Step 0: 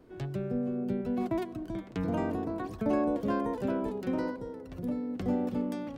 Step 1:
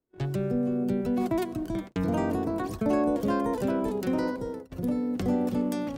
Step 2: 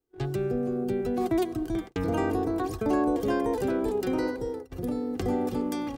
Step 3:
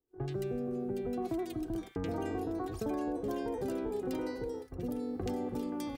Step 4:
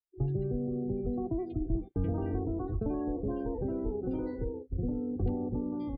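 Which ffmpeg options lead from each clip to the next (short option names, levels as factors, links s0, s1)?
-filter_complex "[0:a]agate=range=0.0178:threshold=0.00794:ratio=16:detection=peak,asplit=2[s0][s1];[s1]alimiter=level_in=1.68:limit=0.0631:level=0:latency=1,volume=0.596,volume=1.06[s2];[s0][s2]amix=inputs=2:normalize=0,adynamicequalizer=threshold=0.00158:dfrequency=4800:dqfactor=0.7:tfrequency=4800:tqfactor=0.7:attack=5:release=100:ratio=0.375:range=4:mode=boostabove:tftype=highshelf"
-af "aecho=1:1:2.5:0.58"
-filter_complex "[0:a]acompressor=threshold=0.0355:ratio=3,acrossover=split=1500[s0][s1];[s1]adelay=80[s2];[s0][s2]amix=inputs=2:normalize=0,volume=0.631"
-af "aresample=11025,aresample=44100,afftdn=nr=31:nf=-44,aemphasis=mode=reproduction:type=riaa,volume=0.668"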